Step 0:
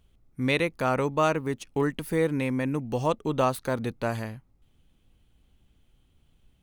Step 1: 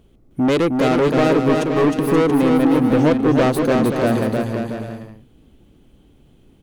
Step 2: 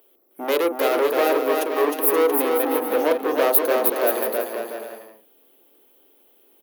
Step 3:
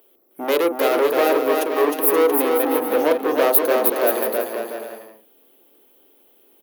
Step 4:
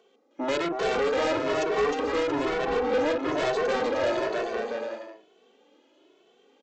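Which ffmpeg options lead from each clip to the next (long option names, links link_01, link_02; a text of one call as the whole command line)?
ffmpeg -i in.wav -af "equalizer=frequency=330:width_type=o:width=2.3:gain=13,asoftclip=type=tanh:threshold=-19.5dB,aecho=1:1:310|527|678.9|785.2|859.7:0.631|0.398|0.251|0.158|0.1,volume=6dB" out.wav
ffmpeg -i in.wav -filter_complex "[0:a]highpass=frequency=400:width=0.5412,highpass=frequency=400:width=1.3066,acrossover=split=1200[link_01][link_02];[link_01]asplit=2[link_03][link_04];[link_04]adelay=41,volume=-4.5dB[link_05];[link_03][link_05]amix=inputs=2:normalize=0[link_06];[link_02]aexciter=amount=13.5:drive=5.1:freq=11000[link_07];[link_06][link_07]amix=inputs=2:normalize=0,volume=-2dB" out.wav
ffmpeg -i in.wav -af "lowshelf=frequency=100:gain=11.5,volume=1.5dB" out.wav
ffmpeg -i in.wav -filter_complex "[0:a]highpass=180,aresample=16000,asoftclip=type=tanh:threshold=-23.5dB,aresample=44100,asplit=2[link_01][link_02];[link_02]adelay=2.2,afreqshift=1.1[link_03];[link_01][link_03]amix=inputs=2:normalize=1,volume=3.5dB" out.wav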